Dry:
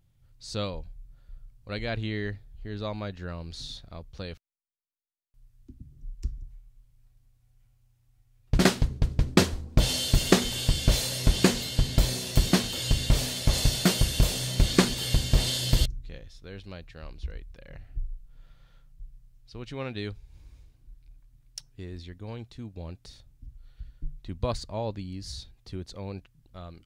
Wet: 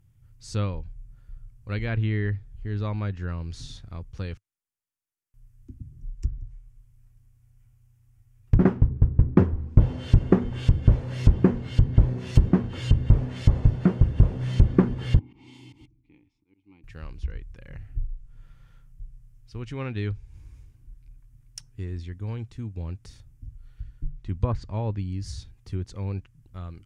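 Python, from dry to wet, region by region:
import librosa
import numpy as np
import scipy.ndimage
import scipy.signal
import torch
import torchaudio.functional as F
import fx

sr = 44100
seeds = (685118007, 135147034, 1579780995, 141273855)

y = fx.chain(x, sr, fx.vowel_filter(vowel='u'),
    fx.auto_swell(attack_ms=228.0), at=(15.19, 16.84))
y = fx.env_lowpass_down(y, sr, base_hz=870.0, full_db=-21.5)
y = fx.graphic_eq_15(y, sr, hz=(100, 630, 4000), db=(7, -8, -10))
y = y * 10.0 ** (3.0 / 20.0)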